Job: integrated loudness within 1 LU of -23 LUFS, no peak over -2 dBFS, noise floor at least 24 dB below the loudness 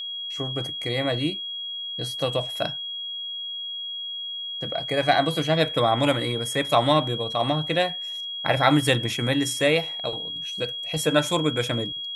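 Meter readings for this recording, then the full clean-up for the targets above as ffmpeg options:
steady tone 3300 Hz; tone level -30 dBFS; loudness -24.5 LUFS; peak -5.0 dBFS; loudness target -23.0 LUFS
-> -af "bandreject=f=3.3k:w=30"
-af "volume=1.5dB"

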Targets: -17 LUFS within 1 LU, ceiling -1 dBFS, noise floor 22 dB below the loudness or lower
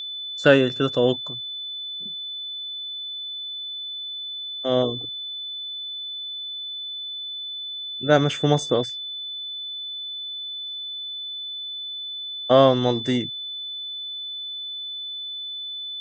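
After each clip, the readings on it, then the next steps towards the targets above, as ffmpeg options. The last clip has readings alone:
steady tone 3500 Hz; tone level -30 dBFS; loudness -25.5 LUFS; peak -2.5 dBFS; loudness target -17.0 LUFS
-> -af "bandreject=f=3.5k:w=30"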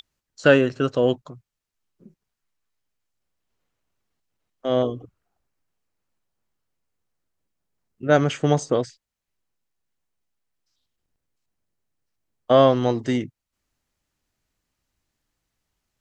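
steady tone none; loudness -21.0 LUFS; peak -3.0 dBFS; loudness target -17.0 LUFS
-> -af "volume=4dB,alimiter=limit=-1dB:level=0:latency=1"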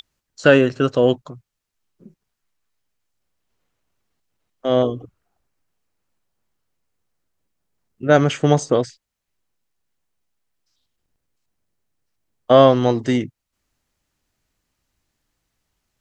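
loudness -17.5 LUFS; peak -1.0 dBFS; noise floor -80 dBFS

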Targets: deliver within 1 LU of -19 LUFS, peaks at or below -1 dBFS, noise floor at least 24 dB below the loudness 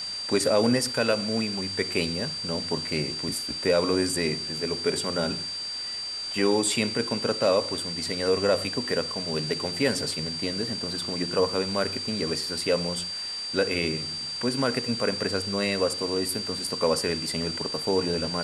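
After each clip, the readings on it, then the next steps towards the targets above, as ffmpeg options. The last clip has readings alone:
steady tone 4700 Hz; tone level -31 dBFS; noise floor -34 dBFS; noise floor target -50 dBFS; loudness -26.0 LUFS; peak -10.0 dBFS; loudness target -19.0 LUFS
-> -af "bandreject=f=4.7k:w=30"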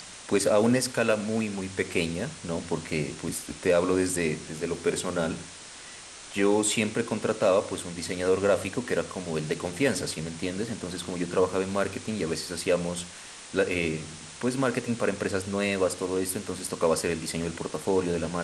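steady tone none; noise floor -44 dBFS; noise floor target -52 dBFS
-> -af "afftdn=nr=8:nf=-44"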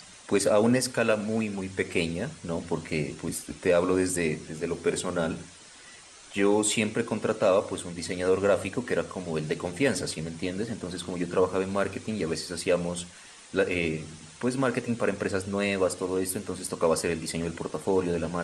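noise floor -49 dBFS; noise floor target -52 dBFS
-> -af "afftdn=nr=6:nf=-49"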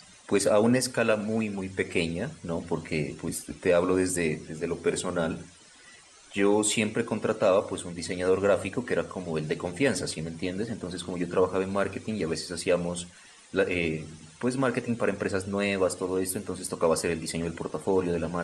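noise floor -53 dBFS; loudness -28.0 LUFS; peak -10.5 dBFS; loudness target -19.0 LUFS
-> -af "volume=9dB"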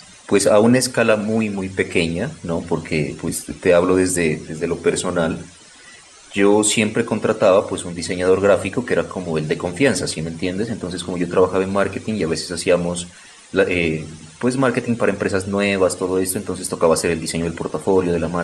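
loudness -19.0 LUFS; peak -1.5 dBFS; noise floor -44 dBFS

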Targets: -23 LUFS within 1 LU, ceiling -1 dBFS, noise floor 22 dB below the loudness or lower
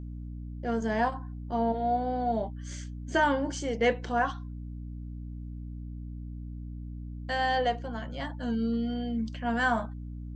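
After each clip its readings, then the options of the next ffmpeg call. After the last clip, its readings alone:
hum 60 Hz; harmonics up to 300 Hz; hum level -36 dBFS; loudness -30.0 LUFS; peak -13.5 dBFS; loudness target -23.0 LUFS
-> -af "bandreject=f=60:t=h:w=6,bandreject=f=120:t=h:w=6,bandreject=f=180:t=h:w=6,bandreject=f=240:t=h:w=6,bandreject=f=300:t=h:w=6"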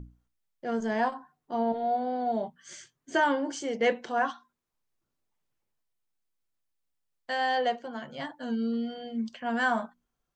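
hum none; loudness -30.0 LUFS; peak -13.5 dBFS; loudness target -23.0 LUFS
-> -af "volume=7dB"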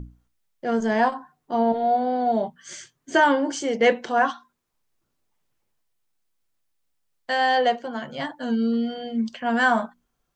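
loudness -23.0 LUFS; peak -6.5 dBFS; noise floor -76 dBFS

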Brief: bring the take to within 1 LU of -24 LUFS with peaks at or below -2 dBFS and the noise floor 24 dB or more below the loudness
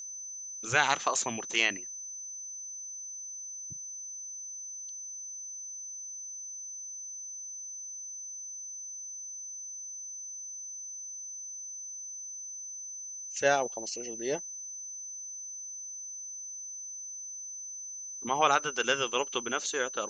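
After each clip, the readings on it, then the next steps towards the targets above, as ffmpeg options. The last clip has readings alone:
steady tone 6100 Hz; tone level -39 dBFS; loudness -34.0 LUFS; peak -8.5 dBFS; loudness target -24.0 LUFS
-> -af "bandreject=f=6.1k:w=30"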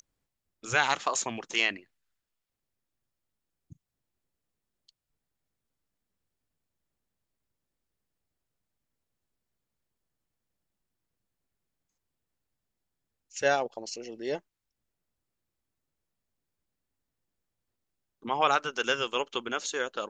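steady tone none; loudness -29.5 LUFS; peak -8.5 dBFS; loudness target -24.0 LUFS
-> -af "volume=5.5dB"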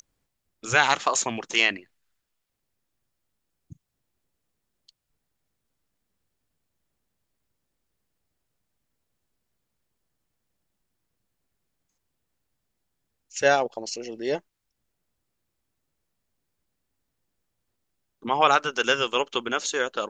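loudness -24.0 LUFS; peak -3.0 dBFS; noise floor -80 dBFS

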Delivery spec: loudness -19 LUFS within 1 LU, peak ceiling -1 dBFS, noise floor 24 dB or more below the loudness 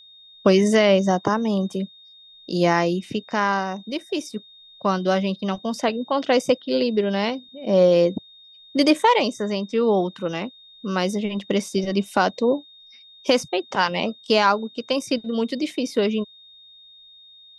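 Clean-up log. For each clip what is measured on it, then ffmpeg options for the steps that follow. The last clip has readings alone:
steady tone 3700 Hz; tone level -46 dBFS; loudness -22.0 LUFS; peak -4.5 dBFS; loudness target -19.0 LUFS
-> -af "bandreject=f=3.7k:w=30"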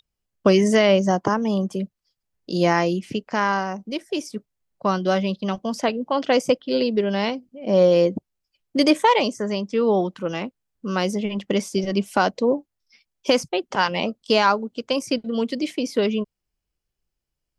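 steady tone none; loudness -22.0 LUFS; peak -4.5 dBFS; loudness target -19.0 LUFS
-> -af "volume=3dB"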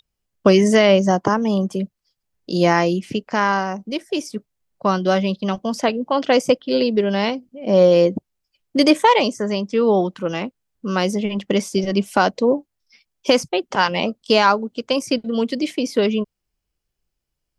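loudness -19.0 LUFS; peak -1.5 dBFS; noise floor -79 dBFS

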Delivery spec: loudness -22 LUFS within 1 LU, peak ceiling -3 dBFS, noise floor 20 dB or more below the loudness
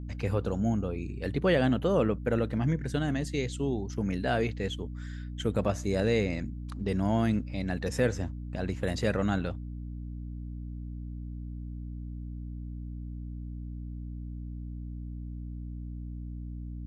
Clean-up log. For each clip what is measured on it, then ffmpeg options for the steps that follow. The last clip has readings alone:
hum 60 Hz; harmonics up to 300 Hz; hum level -36 dBFS; loudness -32.0 LUFS; peak -13.0 dBFS; loudness target -22.0 LUFS
-> -af "bandreject=f=60:t=h:w=4,bandreject=f=120:t=h:w=4,bandreject=f=180:t=h:w=4,bandreject=f=240:t=h:w=4,bandreject=f=300:t=h:w=4"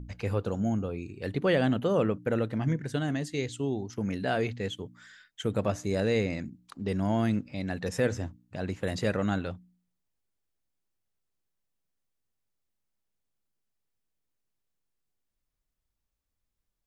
hum none; loudness -30.5 LUFS; peak -13.5 dBFS; loudness target -22.0 LUFS
-> -af "volume=8.5dB"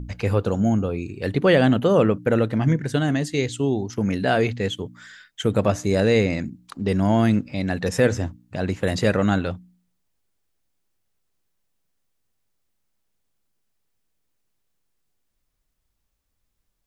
loudness -22.0 LUFS; peak -5.0 dBFS; noise floor -74 dBFS

